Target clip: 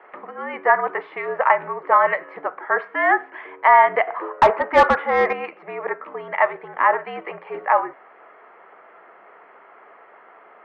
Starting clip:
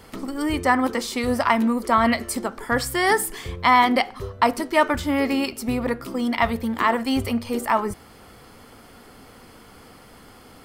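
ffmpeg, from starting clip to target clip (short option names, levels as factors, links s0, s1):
-filter_complex "[0:a]highpass=f=550:t=q:w=0.5412,highpass=f=550:t=q:w=1.307,lowpass=f=2200:t=q:w=0.5176,lowpass=f=2200:t=q:w=0.7071,lowpass=f=2200:t=q:w=1.932,afreqshift=-62,asettb=1/sr,asplit=3[s0][s1][s2];[s0]atrim=end=4.074[s3];[s1]atrim=start=4.07:end=5.33,asetpts=PTS-STARTPTS,afade=t=in:d=0.004:c=qsin,afade=t=out:st=1.256:d=0.004:c=qsin,asplit=2[s4][s5];[s5]highpass=f=720:p=1,volume=8.91,asoftclip=type=tanh:threshold=0.473[s6];[s4][s6]amix=inputs=2:normalize=0,lowpass=f=1100:p=1,volume=0.501[s7];[s2]atrim=start=5.326[s8];[s3][s7]acrossfade=d=0.004:c1=hsin:c2=qsin[s9];[s9][s8]acrossfade=d=0.004:c1=qsin:c2=hsin,volume=1.58"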